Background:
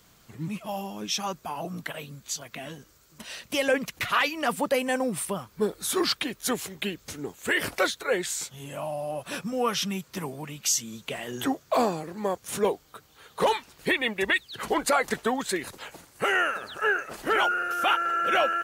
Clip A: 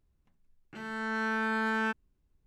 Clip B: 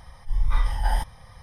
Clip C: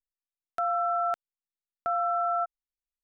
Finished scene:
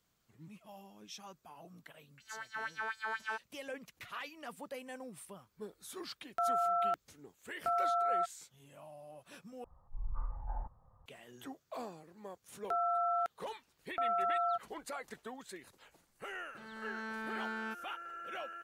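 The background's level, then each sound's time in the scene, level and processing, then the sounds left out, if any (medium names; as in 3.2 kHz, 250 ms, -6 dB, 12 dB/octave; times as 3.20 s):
background -20 dB
1.45 s: add A -9 dB + LFO high-pass sine 4.1 Hz 550–6300 Hz
5.80 s: add C -3 dB + gain riding
9.64 s: replace with B -16 dB + elliptic low-pass 1.3 kHz, stop band 60 dB
12.12 s: add C -5.5 dB
15.82 s: add A -11 dB + peaking EQ 4.3 kHz +3.5 dB 0.42 oct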